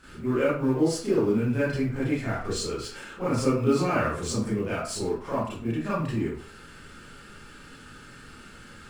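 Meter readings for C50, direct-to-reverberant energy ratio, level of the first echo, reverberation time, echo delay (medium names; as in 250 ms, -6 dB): 0.5 dB, -11.5 dB, no echo, 0.45 s, no echo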